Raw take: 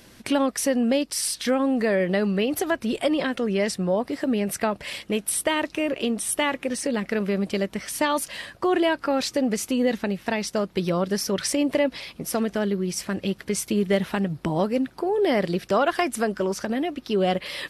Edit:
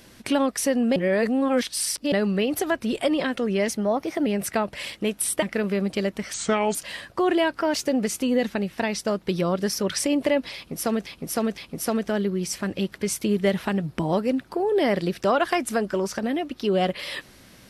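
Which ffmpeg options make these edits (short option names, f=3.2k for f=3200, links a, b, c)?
-filter_complex "[0:a]asplit=12[a][b][c][d][e][f][g][h][i][j][k][l];[a]atrim=end=0.962[m];[b]atrim=start=0.958:end=2.122,asetpts=PTS-STARTPTS,areverse[n];[c]atrim=start=2.118:end=3.684[o];[d]atrim=start=3.68:end=4.34,asetpts=PTS-STARTPTS,asetrate=49833,aresample=44100[p];[e]atrim=start=4.336:end=5.502[q];[f]atrim=start=6.988:end=7.904[r];[g]atrim=start=7.9:end=8.2,asetpts=PTS-STARTPTS,asetrate=31752,aresample=44100[s];[h]atrim=start=8.196:end=9.064[t];[i]atrim=start=9.06:end=9.35,asetpts=PTS-STARTPTS,asetrate=50274,aresample=44100,atrim=end_sample=11218,asetpts=PTS-STARTPTS[u];[j]atrim=start=9.346:end=12.552[v];[k]atrim=start=12.038:end=12.552[w];[l]atrim=start=12.038[x];[m][n]acrossfade=d=0.004:c1=hsin:c2=hsin[y];[y][o]acrossfade=d=0.004:c1=hsin:c2=hsin[z];[z][p]acrossfade=d=0.004:c1=hsin:c2=hsin[aa];[aa][q]acrossfade=d=0.004:c1=hsin:c2=hsin[ab];[ab][r]acrossfade=d=0.004:c1=hsin:c2=hsin[ac];[ac][s]acrossfade=d=0.004:c1=hsin:c2=hsin[ad];[ad][t]acrossfade=d=0.004:c1=hsin:c2=hsin[ae];[ae][u]acrossfade=d=0.004:c1=hsin:c2=hsin[af];[af][v]acrossfade=d=0.004:c1=hsin:c2=hsin[ag];[ag][w]acrossfade=d=0.004:c1=hsin:c2=hsin[ah];[ah][x]acrossfade=d=0.004:c1=hsin:c2=hsin"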